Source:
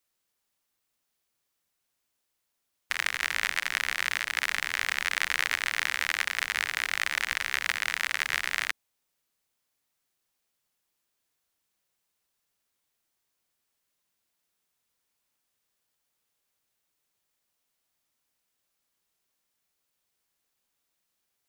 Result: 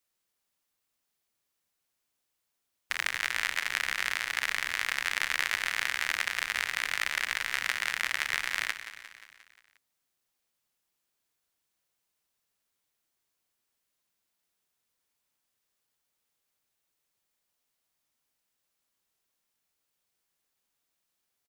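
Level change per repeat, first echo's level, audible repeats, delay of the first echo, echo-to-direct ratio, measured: -4.5 dB, -12.0 dB, 5, 0.177 s, -10.0 dB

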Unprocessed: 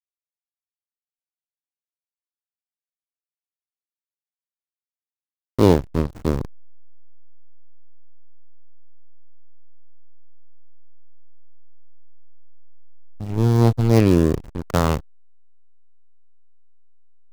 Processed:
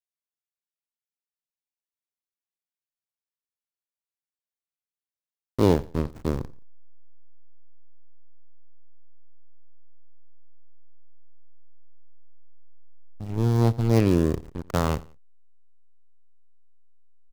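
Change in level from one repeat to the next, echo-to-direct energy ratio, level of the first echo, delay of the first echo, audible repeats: -9.5 dB, -20.5 dB, -21.0 dB, 87 ms, 2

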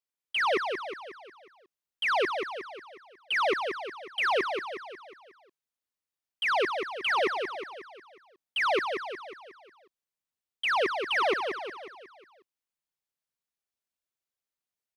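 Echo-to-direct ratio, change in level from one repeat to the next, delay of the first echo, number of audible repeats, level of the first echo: -4.5 dB, -6.0 dB, 0.181 s, 5, -6.0 dB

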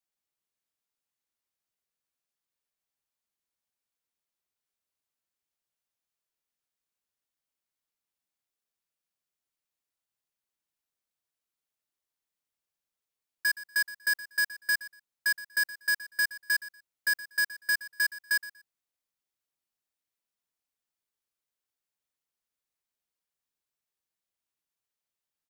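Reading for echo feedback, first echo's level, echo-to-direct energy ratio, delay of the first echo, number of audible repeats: 20%, -16.5 dB, -16.5 dB, 0.12 s, 2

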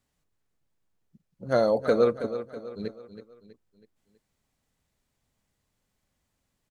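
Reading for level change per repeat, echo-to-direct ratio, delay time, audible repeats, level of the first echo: -7.0 dB, -10.5 dB, 0.324 s, 4, -11.5 dB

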